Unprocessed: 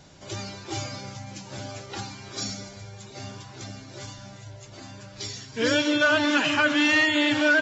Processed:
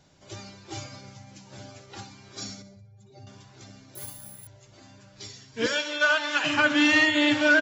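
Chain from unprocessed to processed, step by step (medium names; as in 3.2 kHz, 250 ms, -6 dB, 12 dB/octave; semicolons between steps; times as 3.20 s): 2.62–3.27 s: spectral contrast enhancement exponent 1.9; 5.66–6.44 s: high-pass 670 Hz 12 dB/octave; feedback delay 61 ms, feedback 42%, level -13.5 dB; 3.95–4.47 s: careless resampling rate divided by 4×, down filtered, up zero stuff; upward expansion 1.5:1, over -38 dBFS; trim +1 dB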